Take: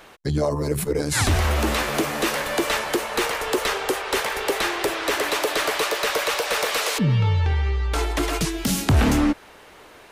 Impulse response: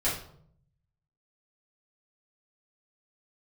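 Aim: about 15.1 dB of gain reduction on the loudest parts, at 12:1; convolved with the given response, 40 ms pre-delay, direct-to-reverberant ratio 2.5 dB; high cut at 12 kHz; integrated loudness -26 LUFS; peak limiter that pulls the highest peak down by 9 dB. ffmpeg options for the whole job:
-filter_complex "[0:a]lowpass=12000,acompressor=threshold=0.0355:ratio=12,alimiter=level_in=1.26:limit=0.0631:level=0:latency=1,volume=0.794,asplit=2[s0][s1];[1:a]atrim=start_sample=2205,adelay=40[s2];[s1][s2]afir=irnorm=-1:irlink=0,volume=0.266[s3];[s0][s3]amix=inputs=2:normalize=0,volume=2"

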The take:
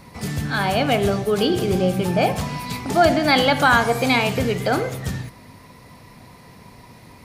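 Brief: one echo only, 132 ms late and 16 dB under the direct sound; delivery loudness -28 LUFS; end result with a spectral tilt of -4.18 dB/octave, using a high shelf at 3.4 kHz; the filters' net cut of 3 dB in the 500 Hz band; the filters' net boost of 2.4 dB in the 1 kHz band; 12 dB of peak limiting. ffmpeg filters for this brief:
-af "equalizer=f=500:t=o:g=-6.5,equalizer=f=1000:t=o:g=6.5,highshelf=f=3400:g=-3.5,alimiter=limit=0.224:level=0:latency=1,aecho=1:1:132:0.158,volume=0.562"

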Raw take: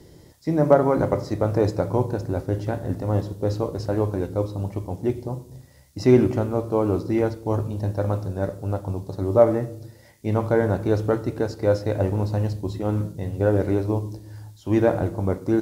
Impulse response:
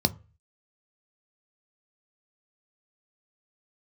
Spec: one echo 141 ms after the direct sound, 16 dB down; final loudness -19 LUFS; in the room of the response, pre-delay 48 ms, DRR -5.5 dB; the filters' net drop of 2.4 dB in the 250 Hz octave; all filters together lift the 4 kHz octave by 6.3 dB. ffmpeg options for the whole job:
-filter_complex "[0:a]equalizer=f=250:t=o:g=-3.5,equalizer=f=4000:t=o:g=8,aecho=1:1:141:0.158,asplit=2[s0][s1];[1:a]atrim=start_sample=2205,adelay=48[s2];[s1][s2]afir=irnorm=-1:irlink=0,volume=0.596[s3];[s0][s3]amix=inputs=2:normalize=0,volume=0.299"

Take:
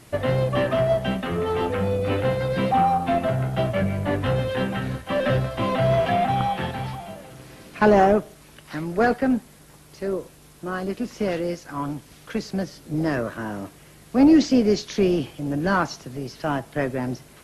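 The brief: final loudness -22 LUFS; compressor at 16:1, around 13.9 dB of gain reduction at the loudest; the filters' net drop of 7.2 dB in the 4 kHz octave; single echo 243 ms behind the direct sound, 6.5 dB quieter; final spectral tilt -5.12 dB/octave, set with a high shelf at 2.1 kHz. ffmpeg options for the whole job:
-af "highshelf=f=2100:g=-5,equalizer=f=4000:t=o:g=-5,acompressor=threshold=0.0562:ratio=16,aecho=1:1:243:0.473,volume=2.66"

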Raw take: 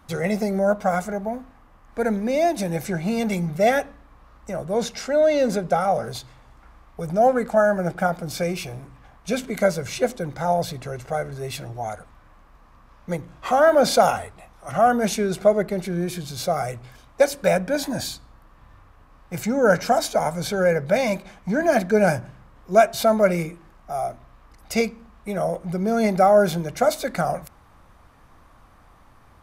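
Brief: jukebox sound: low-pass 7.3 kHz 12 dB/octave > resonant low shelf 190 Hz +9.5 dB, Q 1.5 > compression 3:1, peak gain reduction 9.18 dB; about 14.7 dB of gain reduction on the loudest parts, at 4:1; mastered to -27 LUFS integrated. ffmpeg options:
-af "acompressor=threshold=0.0355:ratio=4,lowpass=7300,lowshelf=f=190:t=q:w=1.5:g=9.5,acompressor=threshold=0.0224:ratio=3,volume=2.99"

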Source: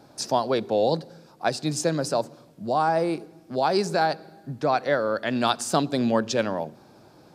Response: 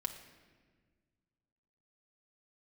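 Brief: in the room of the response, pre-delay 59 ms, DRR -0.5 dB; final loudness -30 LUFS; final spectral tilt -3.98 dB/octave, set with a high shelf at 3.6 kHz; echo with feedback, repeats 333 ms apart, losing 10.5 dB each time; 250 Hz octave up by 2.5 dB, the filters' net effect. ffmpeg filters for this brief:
-filter_complex "[0:a]equalizer=f=250:t=o:g=3,highshelf=f=3600:g=6.5,aecho=1:1:333|666|999:0.299|0.0896|0.0269,asplit=2[s0][s1];[1:a]atrim=start_sample=2205,adelay=59[s2];[s1][s2]afir=irnorm=-1:irlink=0,volume=1.06[s3];[s0][s3]amix=inputs=2:normalize=0,volume=0.335"

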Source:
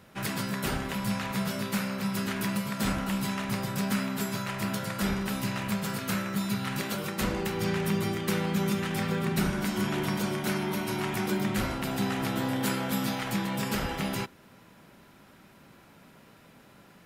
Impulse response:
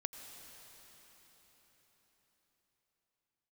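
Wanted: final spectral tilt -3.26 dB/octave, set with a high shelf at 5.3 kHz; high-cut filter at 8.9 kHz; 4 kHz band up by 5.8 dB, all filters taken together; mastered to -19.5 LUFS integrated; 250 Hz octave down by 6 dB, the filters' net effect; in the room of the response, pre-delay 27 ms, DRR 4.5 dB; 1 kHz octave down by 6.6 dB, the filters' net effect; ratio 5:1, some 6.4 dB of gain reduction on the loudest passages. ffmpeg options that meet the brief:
-filter_complex "[0:a]lowpass=8900,equalizer=f=250:t=o:g=-8.5,equalizer=f=1000:t=o:g=-9,equalizer=f=4000:t=o:g=6,highshelf=f=5300:g=5,acompressor=threshold=0.02:ratio=5,asplit=2[s0][s1];[1:a]atrim=start_sample=2205,adelay=27[s2];[s1][s2]afir=irnorm=-1:irlink=0,volume=0.668[s3];[s0][s3]amix=inputs=2:normalize=0,volume=6.31"

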